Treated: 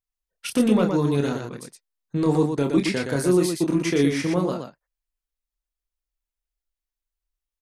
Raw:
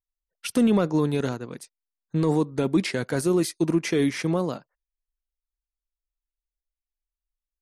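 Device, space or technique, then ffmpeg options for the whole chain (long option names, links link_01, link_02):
slapback doubling: -filter_complex "[0:a]asplit=3[link_01][link_02][link_03];[link_02]adelay=28,volume=-5.5dB[link_04];[link_03]adelay=119,volume=-5dB[link_05];[link_01][link_04][link_05]amix=inputs=3:normalize=0"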